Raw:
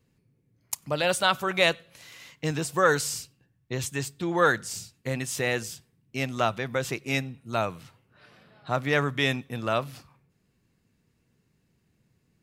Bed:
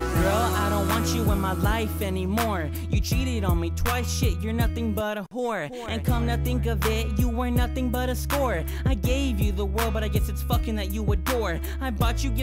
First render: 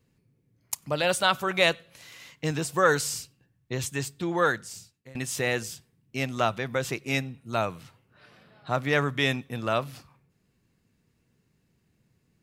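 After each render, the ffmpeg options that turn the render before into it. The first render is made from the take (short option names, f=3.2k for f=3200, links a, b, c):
-filter_complex "[0:a]asplit=2[a][b];[a]atrim=end=5.15,asetpts=PTS-STARTPTS,afade=t=out:st=4.22:d=0.93:silence=0.0794328[c];[b]atrim=start=5.15,asetpts=PTS-STARTPTS,afade=t=in:d=0.004:c=hsin:silence=0.0794328[d];[c][d]concat=n=2:v=0:a=1"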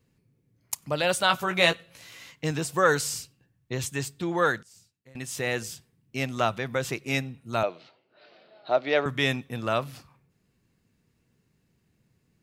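-filter_complex "[0:a]asettb=1/sr,asplit=3[a][b][c];[a]atrim=end=1.284[d];[b]atrim=start=1.28:end=2.32,asetpts=PTS-STARTPTS,afade=t=in:d=0.004:c=qsin,afade=t=out:st=1.036:d=0.004:c=qsin,asplit=2[e][f];[f]adelay=17,volume=-6dB[g];[e][g]amix=inputs=2:normalize=0,atrim=end_sample=45864[h];[c]atrim=start=2.316[i];[d][h]acrossfade=d=0.004:c1=hsin:c2=qsin[j];[j][i]acrossfade=d=0.004:c1=qsin:c2=hsin,asettb=1/sr,asplit=3[k][l][m];[k]atrim=end=7.634[n];[l]atrim=start=7.63:end=9.06,asetpts=PTS-STARTPTS,afade=t=in:d=0.004:c=qsin,afade=t=out:st=1.426:d=0.004:c=qsin,highpass=350,equalizer=f=350:t=q:w=4:g=6,equalizer=f=640:t=q:w=4:g=9,equalizer=f=1.1k:t=q:w=4:g=-6,equalizer=f=1.7k:t=q:w=4:g=-5,equalizer=f=4.3k:t=q:w=4:g=6,lowpass=f=4.6k:w=0.5412,lowpass=f=4.6k:w=1.3066[o];[m]atrim=start=9.056[p];[n][o]acrossfade=d=0.004:c1=hsin:c2=qsin[q];[q][p]acrossfade=d=0.004:c1=qsin:c2=hsin,asplit=2[r][s];[r]atrim=end=4.63,asetpts=PTS-STARTPTS,afade=t=out:st=4.626:d=0.004:c=hsin:silence=0.141254[t];[s]atrim=start=4.63,asetpts=PTS-STARTPTS,afade=t=in:d=1.07:silence=0.141254[u];[t][u]concat=n=2:v=0:a=1"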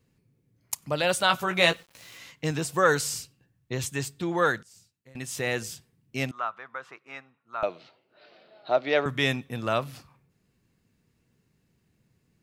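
-filter_complex "[0:a]asettb=1/sr,asplit=3[a][b][c];[a]atrim=end=1.694[d];[b]atrim=start=1.69:end=2.18,asetpts=PTS-STARTPTS,afade=t=in:d=0.004:c=qsin,afade=t=out:st=0.486:d=0.004:c=qsin,aeval=exprs='val(0)*gte(abs(val(0)),0.00299)':c=same[e];[c]atrim=start=2.176[f];[d][e]acrossfade=d=0.004:c1=hsin:c2=qsin[g];[g][f]acrossfade=d=0.004:c1=qsin:c2=hsin,asettb=1/sr,asplit=3[h][i][j];[h]atrim=end=6.314[k];[i]atrim=start=6.31:end=7.63,asetpts=PTS-STARTPTS,afade=t=in:d=0.004:c=qsin,afade=t=out:st=1.316:d=0.004:c=qsin,bandpass=f=1.2k:t=q:w=3[l];[j]atrim=start=7.626[m];[k][l]acrossfade=d=0.004:c1=hsin:c2=qsin[n];[n][m]acrossfade=d=0.004:c1=qsin:c2=hsin"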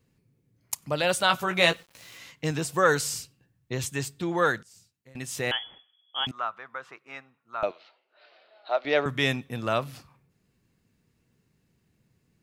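-filter_complex "[0:a]asettb=1/sr,asplit=3[a][b][c];[a]atrim=end=5.514[d];[b]atrim=start=5.51:end=6.27,asetpts=PTS-STARTPTS,afade=t=in:d=0.004:c=qsin,afade=t=out:st=0.756:d=0.004:c=qsin,lowpass=f=3k:t=q:w=0.5098,lowpass=f=3k:t=q:w=0.6013,lowpass=f=3k:t=q:w=0.9,lowpass=f=3k:t=q:w=2.563,afreqshift=-3500[e];[c]atrim=start=6.266[f];[d][e]acrossfade=d=0.004:c1=hsin:c2=qsin[g];[g][f]acrossfade=d=0.004:c1=qsin:c2=hsin,asettb=1/sr,asplit=3[h][i][j];[h]atrim=end=7.714[k];[i]atrim=start=7.71:end=8.85,asetpts=PTS-STARTPTS,afade=t=in:d=0.004:c=qsin,afade=t=out:st=1.136:d=0.004:c=qsin,highpass=640,lowpass=5k[l];[j]atrim=start=8.846[m];[k][l]acrossfade=d=0.004:c1=hsin:c2=qsin[n];[n][m]acrossfade=d=0.004:c1=qsin:c2=hsin"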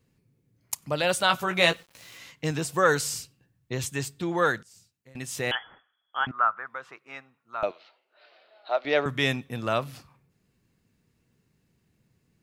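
-filter_complex "[0:a]asettb=1/sr,asplit=3[a][b][c];[a]atrim=end=5.554[d];[b]atrim=start=5.55:end=6.67,asetpts=PTS-STARTPTS,afade=t=in:d=0.004:c=qsin,afade=t=out:st=1.116:d=0.004:c=qsin,lowpass=f=1.5k:t=q:w=3.2[e];[c]atrim=start=6.666[f];[d][e]acrossfade=d=0.004:c1=hsin:c2=qsin[g];[g][f]acrossfade=d=0.004:c1=qsin:c2=hsin"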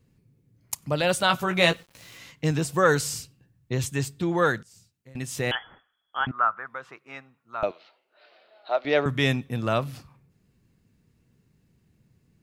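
-af "lowshelf=f=300:g=7"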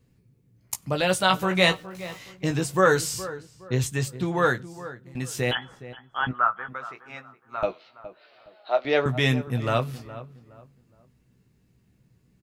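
-filter_complex "[0:a]asplit=2[a][b];[b]adelay=16,volume=-7dB[c];[a][c]amix=inputs=2:normalize=0,asplit=2[d][e];[e]adelay=416,lowpass=f=1.6k:p=1,volume=-14.5dB,asplit=2[f][g];[g]adelay=416,lowpass=f=1.6k:p=1,volume=0.31,asplit=2[h][i];[i]adelay=416,lowpass=f=1.6k:p=1,volume=0.31[j];[d][f][h][j]amix=inputs=4:normalize=0"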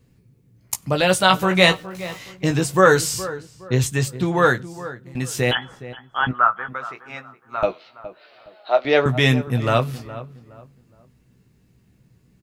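-af "volume=5.5dB,alimiter=limit=-1dB:level=0:latency=1"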